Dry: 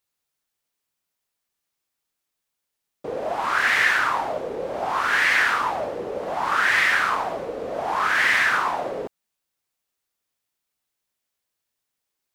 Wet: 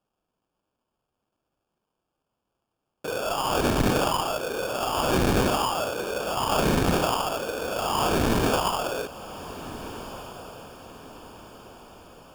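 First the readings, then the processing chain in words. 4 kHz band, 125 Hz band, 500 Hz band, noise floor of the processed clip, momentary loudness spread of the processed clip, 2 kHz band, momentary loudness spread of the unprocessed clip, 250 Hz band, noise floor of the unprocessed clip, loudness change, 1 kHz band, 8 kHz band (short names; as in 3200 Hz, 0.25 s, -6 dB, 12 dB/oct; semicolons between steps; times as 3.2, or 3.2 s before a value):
+0.5 dB, +16.0 dB, +3.0 dB, -82 dBFS, 18 LU, -13.5 dB, 13 LU, +11.5 dB, -82 dBFS, -4.0 dB, -2.5 dB, +5.0 dB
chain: sample-rate reducer 2000 Hz, jitter 0%; one-sided clip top -25 dBFS; diffused feedback echo 1.492 s, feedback 44%, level -14 dB; ending taper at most 190 dB/s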